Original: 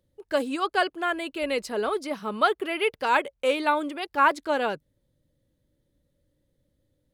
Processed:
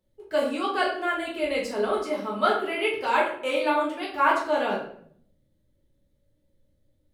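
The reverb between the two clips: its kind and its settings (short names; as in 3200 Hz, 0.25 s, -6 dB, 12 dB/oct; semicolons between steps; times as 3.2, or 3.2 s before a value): shoebox room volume 100 m³, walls mixed, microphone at 1.5 m; gain -6.5 dB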